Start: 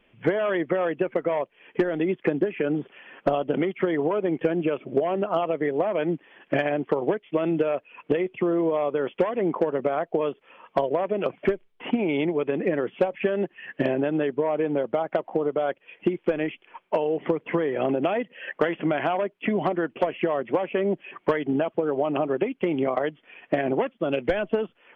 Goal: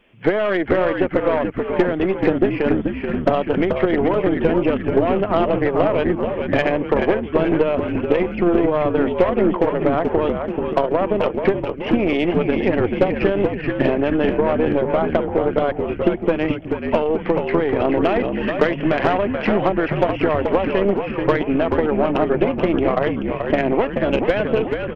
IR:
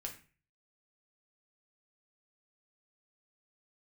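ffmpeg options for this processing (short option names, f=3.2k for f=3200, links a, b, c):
-filter_complex "[0:a]asplit=9[a][b][c][d][e][f][g][h][i];[b]adelay=432,afreqshift=-62,volume=-5dB[j];[c]adelay=864,afreqshift=-124,volume=-9.7dB[k];[d]adelay=1296,afreqshift=-186,volume=-14.5dB[l];[e]adelay=1728,afreqshift=-248,volume=-19.2dB[m];[f]adelay=2160,afreqshift=-310,volume=-23.9dB[n];[g]adelay=2592,afreqshift=-372,volume=-28.7dB[o];[h]adelay=3024,afreqshift=-434,volume=-33.4dB[p];[i]adelay=3456,afreqshift=-496,volume=-38.1dB[q];[a][j][k][l][m][n][o][p][q]amix=inputs=9:normalize=0,aeval=exprs='0.398*(cos(1*acos(clip(val(0)/0.398,-1,1)))-cos(1*PI/2))+0.0282*(cos(6*acos(clip(val(0)/0.398,-1,1)))-cos(6*PI/2))':c=same,volume=5dB"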